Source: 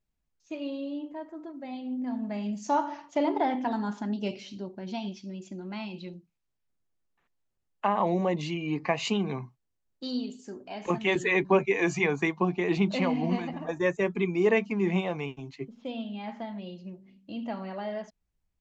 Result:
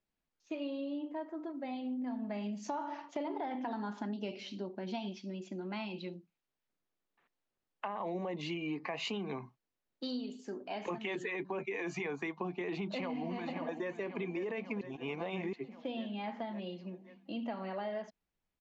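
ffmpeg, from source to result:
-filter_complex "[0:a]asplit=2[s0][s1];[s1]afade=t=in:st=12.88:d=0.01,afade=t=out:st=13.93:d=0.01,aecho=0:1:540|1080|1620|2160|2700|3240|3780:0.237137|0.142282|0.0853695|0.0512217|0.030733|0.0184398|0.0110639[s2];[s0][s2]amix=inputs=2:normalize=0,asplit=3[s3][s4][s5];[s3]atrim=end=14.812[s6];[s4]atrim=start=14.808:end=15.532,asetpts=PTS-STARTPTS,areverse[s7];[s5]atrim=start=15.528[s8];[s6][s7]acrossfade=d=0.004:c1=hsin:c2=hsin[s9];[s9][s8]acrossfade=d=0.004:c1=hsin:c2=hsin,acrossover=split=190 5000:gain=0.224 1 0.251[s10][s11][s12];[s10][s11][s12]amix=inputs=3:normalize=0,alimiter=limit=0.0708:level=0:latency=1:release=17,acompressor=threshold=0.0158:ratio=6,volume=1.12"

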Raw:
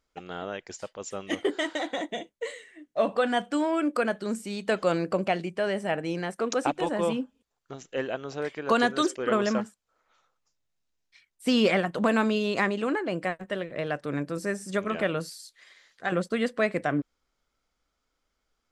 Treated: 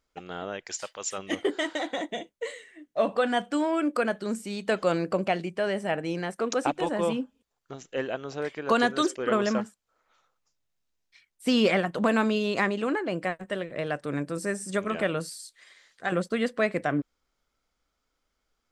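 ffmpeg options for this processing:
-filter_complex "[0:a]asplit=3[s0][s1][s2];[s0]afade=t=out:st=0.65:d=0.02[s3];[s1]tiltshelf=f=640:g=-8.5,afade=t=in:st=0.65:d=0.02,afade=t=out:st=1.17:d=0.02[s4];[s2]afade=t=in:st=1.17:d=0.02[s5];[s3][s4][s5]amix=inputs=3:normalize=0,asettb=1/sr,asplit=3[s6][s7][s8];[s6]atrim=end=13.394[s9];[s7]atrim=start=13.39:end=16.23,asetpts=PTS-STARTPTS,afade=t=in:d=0.004:c=qsin,afade=t=out:st=2.836:d=0.004:c=qsin,equalizer=f=8500:w=3.7:g=7.5[s10];[s8]atrim=start=16.226[s11];[s9][s10]acrossfade=d=0.004:c1=hsin:c2=qsin[s12];[s12][s11]acrossfade=d=0.004:c1=qsin:c2=hsin"

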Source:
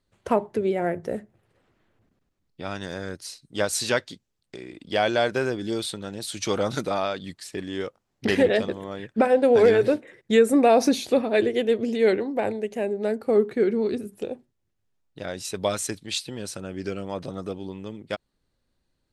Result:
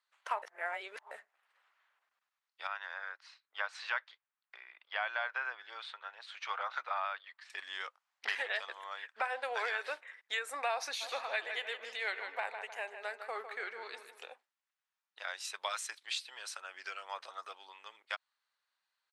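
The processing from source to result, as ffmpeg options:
-filter_complex "[0:a]asettb=1/sr,asplit=3[s0][s1][s2];[s0]atrim=end=2.674[s3];[s1]atrim=start=2.67:end=7.5,asetpts=PTS-STARTPTS,afade=t=in:d=0.004:c=qsin,afade=t=out:st=4.826:d=0.004:c=qsin,highpass=540,lowpass=2100[s4];[s2]atrim=start=7.496[s5];[s3][s4]acrossfade=d=0.004:c1=hsin:c2=qsin[s6];[s6][s5]acrossfade=d=0.004:c1=qsin:c2=hsin,asplit=3[s7][s8][s9];[s7]afade=t=out:st=11:d=0.02[s10];[s8]asplit=2[s11][s12];[s12]adelay=154,lowpass=f=4100:p=1,volume=0.355,asplit=2[s13][s14];[s14]adelay=154,lowpass=f=4100:p=1,volume=0.43,asplit=2[s15][s16];[s16]adelay=154,lowpass=f=4100:p=1,volume=0.43,asplit=2[s17][s18];[s18]adelay=154,lowpass=f=4100:p=1,volume=0.43,asplit=2[s19][s20];[s20]adelay=154,lowpass=f=4100:p=1,volume=0.43[s21];[s11][s13][s15][s17][s19][s21]amix=inputs=6:normalize=0,afade=t=in:st=11:d=0.02,afade=t=out:st=14.32:d=0.02[s22];[s9]afade=t=in:st=14.32:d=0.02[s23];[s10][s22][s23]amix=inputs=3:normalize=0,asplit=3[s24][s25][s26];[s24]atrim=end=0.422[s27];[s25]atrim=start=0.418:end=1.112,asetpts=PTS-STARTPTS,areverse[s28];[s26]atrim=start=1.108[s29];[s27][s28]acrossfade=d=0.004:c1=hsin:c2=hsin[s30];[s30][s29]acrossfade=d=0.004:c1=hsin:c2=hsin,highpass=f=990:w=0.5412,highpass=f=990:w=1.3066,acompressor=threshold=0.0224:ratio=2.5,lowpass=f=2600:p=1,volume=1.19"

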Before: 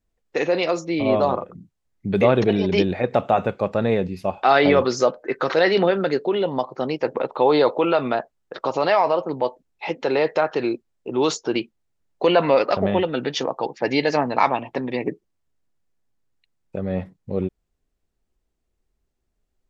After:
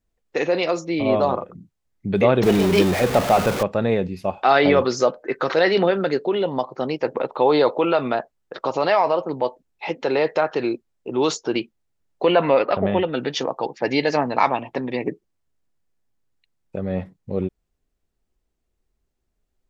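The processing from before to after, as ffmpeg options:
-filter_complex "[0:a]asettb=1/sr,asplit=3[s0][s1][s2];[s0]atrim=end=2.434[s3];[s1]atrim=start=2.43:end=3.63,asetpts=PTS-STARTPTS,afade=t=in:d=0.004:c=qsin,afade=t=out:st=1.196:d=0.004:c=qsin,aeval=exprs='val(0)+0.5*0.1*sgn(val(0))':c=same[s4];[s2]atrim=start=3.626[s5];[s3][s4]acrossfade=d=0.004:c1=hsin:c2=qsin[s6];[s6][s5]acrossfade=d=0.004:c1=qsin:c2=hsin,asettb=1/sr,asplit=3[s7][s8][s9];[s7]atrim=end=12.244[s10];[s8]atrim=start=12.24:end=13.13,asetpts=PTS-STARTPTS,afade=t=in:d=0.004:c=qsin,afade=t=out:st=0.886:d=0.004:c=qsin,lowpass=f=3700:w=0.5412,lowpass=f=3700:w=1.3066[s11];[s9]atrim=start=13.126[s12];[s10][s11]acrossfade=d=0.004:c1=hsin:c2=qsin[s13];[s13][s12]acrossfade=d=0.004:c1=qsin:c2=hsin"

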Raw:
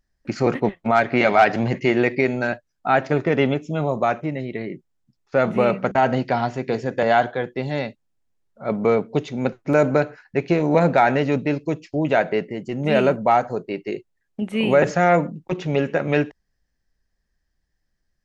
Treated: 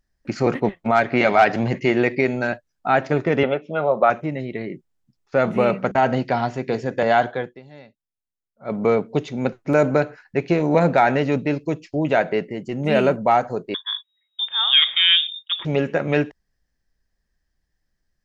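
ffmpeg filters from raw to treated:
-filter_complex "[0:a]asettb=1/sr,asplit=3[s0][s1][s2];[s0]atrim=end=3.434[s3];[s1]atrim=start=3.43:end=4.1,asetpts=PTS-STARTPTS,afade=t=in:d=0.004:c=qsin,afade=t=out:st=0.666:d=0.004:c=qsin,highpass=f=160:w=0.5412,highpass=f=160:w=1.3066,equalizer=f=160:t=q:w=4:g=-5,equalizer=f=280:t=q:w=4:g=-9,equalizer=f=550:t=q:w=4:g=7,equalizer=f=780:t=q:w=4:g=3,equalizer=f=1400:t=q:w=4:g=9,lowpass=f=3600:w=0.5412,lowpass=f=3600:w=1.3066[s4];[s2]atrim=start=4.096[s5];[s3][s4]acrossfade=d=0.004:c1=hsin:c2=qsin[s6];[s6][s5]acrossfade=d=0.004:c1=qsin:c2=hsin,asettb=1/sr,asplit=3[s7][s8][s9];[s7]atrim=end=13.744[s10];[s8]atrim=start=13.74:end=15.65,asetpts=PTS-STARTPTS,afade=t=in:d=0.004:c=qsin,afade=t=out:st=1.906:d=0.004:c=qsin,lowpass=f=3200:t=q:w=0.5098,lowpass=f=3200:t=q:w=0.6013,lowpass=f=3200:t=q:w=0.9,lowpass=f=3200:t=q:w=2.563,afreqshift=-3800[s11];[s9]atrim=start=15.646[s12];[s10][s11]acrossfade=d=0.004:c1=hsin:c2=qsin[s13];[s13][s12]acrossfade=d=0.004:c1=qsin:c2=hsin,asplit=3[s14][s15][s16];[s14]atrim=end=7.6,asetpts=PTS-STARTPTS,afade=t=out:st=7.36:d=0.24:silence=0.11885[s17];[s15]atrim=start=7.6:end=8.55,asetpts=PTS-STARTPTS,volume=0.119[s18];[s16]atrim=start=8.55,asetpts=PTS-STARTPTS,afade=t=in:d=0.24:silence=0.11885[s19];[s17][s18][s19]concat=n=3:v=0:a=1"

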